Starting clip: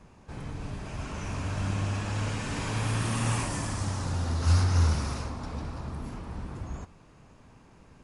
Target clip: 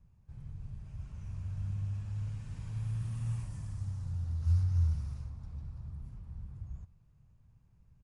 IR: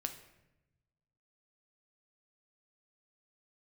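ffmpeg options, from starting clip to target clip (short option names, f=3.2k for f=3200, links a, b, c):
-af "firequalizer=gain_entry='entry(120,0);entry(270,-21);entry(9100,-17)':delay=0.05:min_phase=1,volume=-5dB"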